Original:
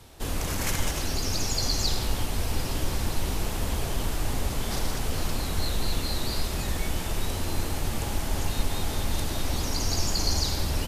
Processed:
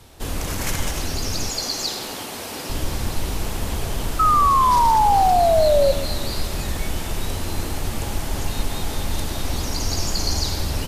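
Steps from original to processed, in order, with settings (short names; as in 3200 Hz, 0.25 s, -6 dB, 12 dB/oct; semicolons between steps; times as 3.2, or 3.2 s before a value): 1.5–2.7 HPF 260 Hz 12 dB/oct; 4.19–5.92 painted sound fall 540–1300 Hz -19 dBFS; echo with dull and thin repeats by turns 0.131 s, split 1300 Hz, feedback 59%, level -13 dB; gain +3 dB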